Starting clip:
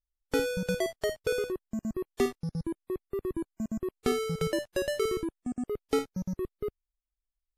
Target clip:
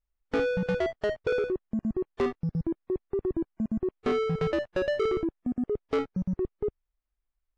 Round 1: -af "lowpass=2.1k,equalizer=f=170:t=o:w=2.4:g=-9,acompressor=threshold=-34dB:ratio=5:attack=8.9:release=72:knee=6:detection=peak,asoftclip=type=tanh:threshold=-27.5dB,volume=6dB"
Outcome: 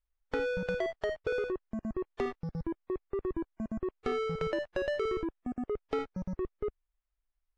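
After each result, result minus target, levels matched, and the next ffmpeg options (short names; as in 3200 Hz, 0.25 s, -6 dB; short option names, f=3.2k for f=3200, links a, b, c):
compressor: peak gain reduction +7.5 dB; 125 Hz band -2.5 dB
-af "lowpass=2.1k,equalizer=f=170:t=o:w=2.4:g=-9,asoftclip=type=tanh:threshold=-27.5dB,volume=6dB"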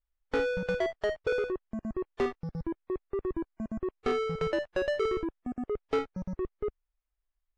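125 Hz band -4.0 dB
-af "lowpass=2.1k,asoftclip=type=tanh:threshold=-27.5dB,volume=6dB"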